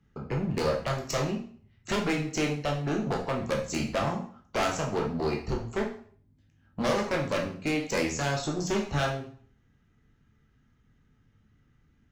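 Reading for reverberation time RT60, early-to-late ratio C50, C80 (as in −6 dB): 0.50 s, 7.5 dB, 11.5 dB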